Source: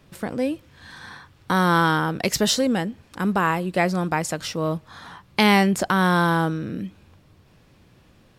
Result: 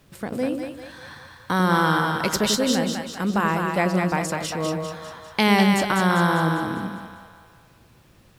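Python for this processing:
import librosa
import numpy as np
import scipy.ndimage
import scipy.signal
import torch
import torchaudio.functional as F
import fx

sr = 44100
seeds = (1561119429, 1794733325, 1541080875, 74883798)

y = fx.echo_split(x, sr, split_hz=560.0, low_ms=91, high_ms=199, feedback_pct=52, wet_db=-4.0)
y = fx.quant_dither(y, sr, seeds[0], bits=10, dither='none')
y = y * librosa.db_to_amplitude(-2.0)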